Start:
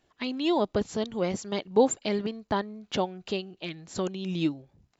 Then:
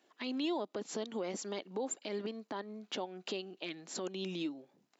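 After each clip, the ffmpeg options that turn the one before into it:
ffmpeg -i in.wav -af "acompressor=threshold=-29dB:ratio=4,alimiter=level_in=3.5dB:limit=-24dB:level=0:latency=1:release=126,volume=-3.5dB,highpass=frequency=230:width=0.5412,highpass=frequency=230:width=1.3066" out.wav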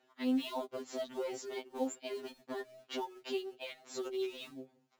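ffmpeg -i in.wav -filter_complex "[0:a]highshelf=frequency=5800:gain=-10.5,asplit=2[link_01][link_02];[link_02]acrusher=bits=3:mode=log:mix=0:aa=0.000001,volume=-4dB[link_03];[link_01][link_03]amix=inputs=2:normalize=0,afftfilt=real='re*2.45*eq(mod(b,6),0)':imag='im*2.45*eq(mod(b,6),0)':win_size=2048:overlap=0.75,volume=-1.5dB" out.wav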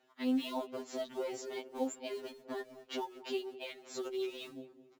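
ffmpeg -i in.wav -filter_complex "[0:a]asplit=2[link_01][link_02];[link_02]adelay=214,lowpass=frequency=1200:poles=1,volume=-15dB,asplit=2[link_03][link_04];[link_04]adelay=214,lowpass=frequency=1200:poles=1,volume=0.55,asplit=2[link_05][link_06];[link_06]adelay=214,lowpass=frequency=1200:poles=1,volume=0.55,asplit=2[link_07][link_08];[link_08]adelay=214,lowpass=frequency=1200:poles=1,volume=0.55,asplit=2[link_09][link_10];[link_10]adelay=214,lowpass=frequency=1200:poles=1,volume=0.55[link_11];[link_01][link_03][link_05][link_07][link_09][link_11]amix=inputs=6:normalize=0" out.wav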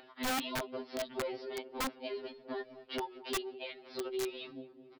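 ffmpeg -i in.wav -af "acompressor=mode=upward:threshold=-48dB:ratio=2.5,aresample=11025,aresample=44100,aeval=exprs='(mod(29.9*val(0)+1,2)-1)/29.9':channel_layout=same,volume=1dB" out.wav

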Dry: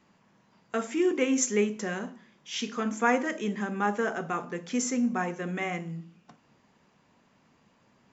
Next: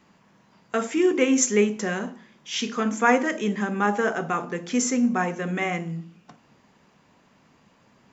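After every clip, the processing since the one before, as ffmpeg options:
ffmpeg -i in.wav -af "bandreject=frequency=116.2:width_type=h:width=4,bandreject=frequency=232.4:width_type=h:width=4,bandreject=frequency=348.6:width_type=h:width=4,bandreject=frequency=464.8:width_type=h:width=4,bandreject=frequency=581:width_type=h:width=4,bandreject=frequency=697.2:width_type=h:width=4,bandreject=frequency=813.4:width_type=h:width=4,bandreject=frequency=929.6:width_type=h:width=4,volume=5.5dB" out.wav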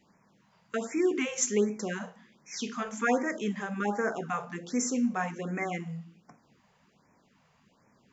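ffmpeg -i in.wav -af "afftfilt=real='re*(1-between(b*sr/1024,270*pow(3700/270,0.5+0.5*sin(2*PI*1.3*pts/sr))/1.41,270*pow(3700/270,0.5+0.5*sin(2*PI*1.3*pts/sr))*1.41))':imag='im*(1-between(b*sr/1024,270*pow(3700/270,0.5+0.5*sin(2*PI*1.3*pts/sr))/1.41,270*pow(3700/270,0.5+0.5*sin(2*PI*1.3*pts/sr))*1.41))':win_size=1024:overlap=0.75,volume=-6dB" out.wav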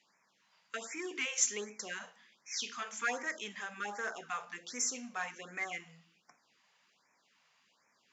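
ffmpeg -i in.wav -filter_complex "[0:a]asplit=2[link_01][link_02];[link_02]volume=28dB,asoftclip=hard,volume=-28dB,volume=-10dB[link_03];[link_01][link_03]amix=inputs=2:normalize=0,bandpass=frequency=4000:width_type=q:width=0.68:csg=0" out.wav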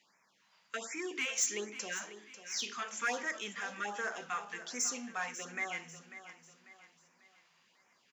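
ffmpeg -i in.wav -af "asoftclip=type=tanh:threshold=-25.5dB,aecho=1:1:544|1088|1632|2176:0.224|0.0895|0.0358|0.0143,volume=1.5dB" out.wav

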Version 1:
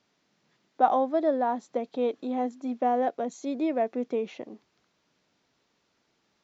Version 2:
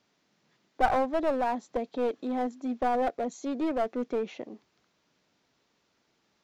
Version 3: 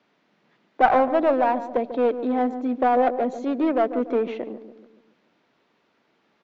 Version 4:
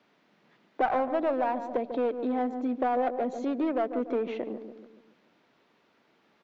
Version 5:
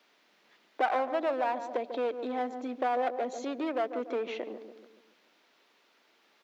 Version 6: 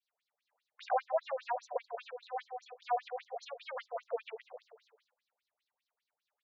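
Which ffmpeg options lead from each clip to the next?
ffmpeg -i in.wav -af "aeval=exprs='clip(val(0),-1,0.0447)':channel_layout=same" out.wav
ffmpeg -i in.wav -filter_complex "[0:a]acrossover=split=150 3500:gain=0.2 1 0.126[link_01][link_02][link_03];[link_01][link_02][link_03]amix=inputs=3:normalize=0,asplit=2[link_04][link_05];[link_05]adelay=143,lowpass=frequency=850:poles=1,volume=-10dB,asplit=2[link_06][link_07];[link_07]adelay=143,lowpass=frequency=850:poles=1,volume=0.54,asplit=2[link_08][link_09];[link_09]adelay=143,lowpass=frequency=850:poles=1,volume=0.54,asplit=2[link_10][link_11];[link_11]adelay=143,lowpass=frequency=850:poles=1,volume=0.54,asplit=2[link_12][link_13];[link_13]adelay=143,lowpass=frequency=850:poles=1,volume=0.54,asplit=2[link_14][link_15];[link_15]adelay=143,lowpass=frequency=850:poles=1,volume=0.54[link_16];[link_06][link_08][link_10][link_12][link_14][link_16]amix=inputs=6:normalize=0[link_17];[link_04][link_17]amix=inputs=2:normalize=0,volume=7.5dB" out.wav
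ffmpeg -i in.wav -af "acompressor=threshold=-30dB:ratio=2" out.wav
ffmpeg -i in.wav -af "highpass=320,highshelf=frequency=2500:gain=11.5,volume=-2.5dB" out.wav
ffmpeg -i in.wav -af "agate=range=-33dB:threshold=-55dB:ratio=3:detection=peak,afftfilt=real='re*between(b*sr/1024,580*pow(5500/580,0.5+0.5*sin(2*PI*5*pts/sr))/1.41,580*pow(5500/580,0.5+0.5*sin(2*PI*5*pts/sr))*1.41)':imag='im*between(b*sr/1024,580*pow(5500/580,0.5+0.5*sin(2*PI*5*pts/sr))/1.41,580*pow(5500/580,0.5+0.5*sin(2*PI*5*pts/sr))*1.41)':win_size=1024:overlap=0.75,volume=1dB" out.wav

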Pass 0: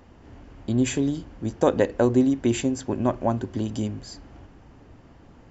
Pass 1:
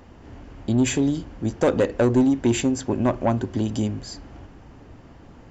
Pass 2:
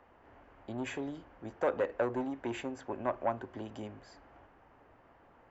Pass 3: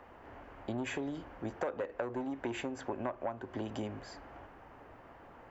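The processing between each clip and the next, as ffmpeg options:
ffmpeg -i in.wav -af "asoftclip=type=tanh:threshold=-15.5dB,volume=4dB" out.wav
ffmpeg -i in.wav -filter_complex "[0:a]acrossover=split=480 2400:gain=0.158 1 0.112[link_01][link_02][link_03];[link_01][link_02][link_03]amix=inputs=3:normalize=0,volume=-6.5dB" out.wav
ffmpeg -i in.wav -af "acompressor=threshold=-41dB:ratio=6,volume=7dB" out.wav

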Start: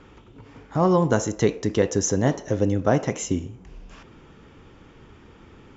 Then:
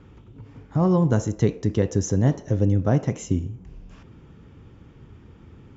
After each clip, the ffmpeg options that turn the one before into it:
ffmpeg -i in.wav -af "equalizer=frequency=99:width=0.42:gain=13,volume=-7dB" out.wav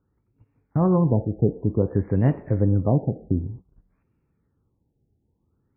ffmpeg -i in.wav -af "agate=range=-23dB:threshold=-37dB:ratio=16:detection=peak,afftfilt=real='re*lt(b*sr/1024,820*pow(2900/820,0.5+0.5*sin(2*PI*0.54*pts/sr)))':imag='im*lt(b*sr/1024,820*pow(2900/820,0.5+0.5*sin(2*PI*0.54*pts/sr)))':win_size=1024:overlap=0.75" out.wav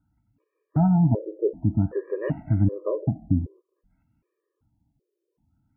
ffmpeg -i in.wav -af "afftfilt=real='re*gt(sin(2*PI*1.3*pts/sr)*(1-2*mod(floor(b*sr/1024/320),2)),0)':imag='im*gt(sin(2*PI*1.3*pts/sr)*(1-2*mod(floor(b*sr/1024/320),2)),0)':win_size=1024:overlap=0.75,volume=1.5dB" out.wav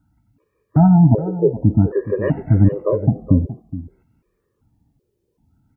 ffmpeg -i in.wav -af "aecho=1:1:420:0.188,volume=8dB" out.wav

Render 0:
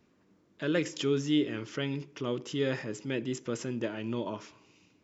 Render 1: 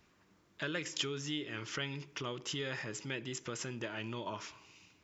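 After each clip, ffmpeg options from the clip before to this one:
ffmpeg -i in.wav -af "acompressor=threshold=-35dB:ratio=3,equalizer=frequency=125:width_type=o:width=1:gain=-4,equalizer=frequency=250:width_type=o:width=1:gain=-10,equalizer=frequency=500:width_type=o:width=1:gain=-7,volume=5dB" out.wav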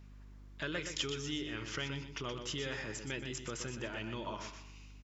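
ffmpeg -i in.wav -af "aeval=exprs='val(0)+0.00251*(sin(2*PI*50*n/s)+sin(2*PI*2*50*n/s)/2+sin(2*PI*3*50*n/s)/3+sin(2*PI*4*50*n/s)/4+sin(2*PI*5*50*n/s)/5)':channel_layout=same,aecho=1:1:123|246|369:0.398|0.0955|0.0229,volume=-1dB" out.wav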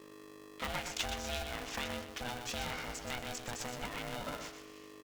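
ffmpeg -i in.wav -af "aeval=exprs='val(0)*sgn(sin(2*PI*370*n/s))':channel_layout=same" out.wav

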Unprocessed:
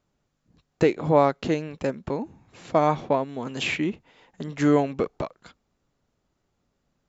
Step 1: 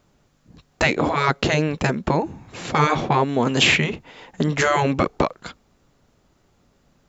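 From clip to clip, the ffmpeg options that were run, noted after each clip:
ffmpeg -i in.wav -af "afftfilt=real='re*lt(hypot(re,im),0.282)':imag='im*lt(hypot(re,im),0.282)':win_size=1024:overlap=0.75,acontrast=80,volume=6dB" out.wav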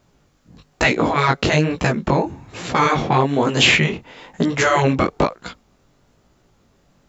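ffmpeg -i in.wav -af "flanger=delay=16:depth=7.3:speed=1.1,volume=5.5dB" out.wav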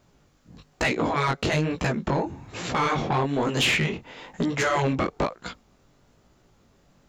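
ffmpeg -i in.wav -filter_complex "[0:a]asplit=2[link_01][link_02];[link_02]acompressor=threshold=-25dB:ratio=6,volume=-2dB[link_03];[link_01][link_03]amix=inputs=2:normalize=0,asoftclip=type=tanh:threshold=-9dB,volume=-7dB" out.wav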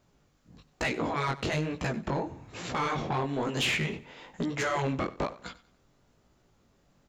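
ffmpeg -i in.wav -af "aecho=1:1:94|188|282:0.126|0.0428|0.0146,volume=-6dB" out.wav

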